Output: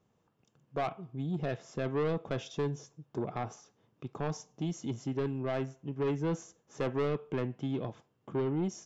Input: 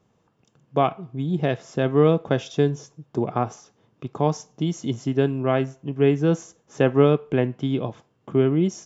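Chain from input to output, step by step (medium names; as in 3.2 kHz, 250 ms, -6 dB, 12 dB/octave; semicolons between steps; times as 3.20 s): saturation -18 dBFS, distortion -9 dB; trim -8 dB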